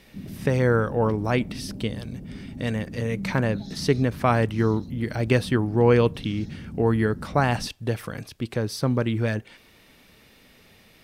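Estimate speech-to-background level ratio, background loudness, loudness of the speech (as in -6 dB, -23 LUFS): 13.5 dB, -38.0 LUFS, -24.5 LUFS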